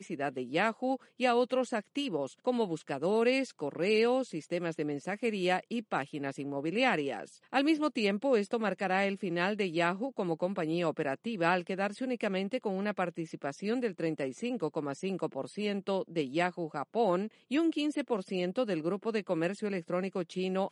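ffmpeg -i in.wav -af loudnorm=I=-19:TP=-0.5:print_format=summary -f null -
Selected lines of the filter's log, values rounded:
Input Integrated:    -32.5 LUFS
Input True Peak:     -13.6 dBTP
Input LRA:             3.3 LU
Input Threshold:     -42.5 LUFS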